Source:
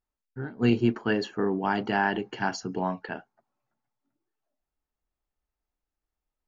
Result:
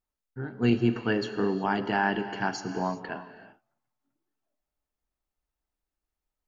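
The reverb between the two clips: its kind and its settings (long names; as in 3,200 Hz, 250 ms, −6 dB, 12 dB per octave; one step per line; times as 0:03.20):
reverb whose tail is shaped and stops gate 410 ms flat, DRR 9.5 dB
level −1 dB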